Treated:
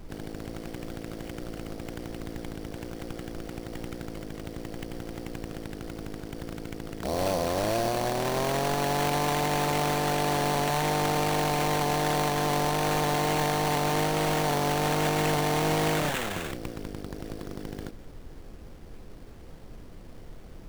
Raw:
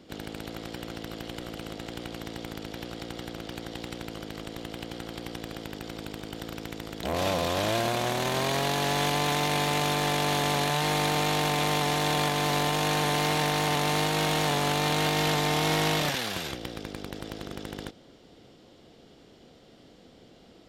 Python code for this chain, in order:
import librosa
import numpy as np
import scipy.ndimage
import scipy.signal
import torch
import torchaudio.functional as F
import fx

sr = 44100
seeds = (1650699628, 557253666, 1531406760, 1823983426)

y = fx.envelope_sharpen(x, sr, power=1.5)
y = fx.dmg_noise_colour(y, sr, seeds[0], colour='brown', level_db=-43.0)
y = fx.sample_hold(y, sr, seeds[1], rate_hz=5100.0, jitter_pct=20)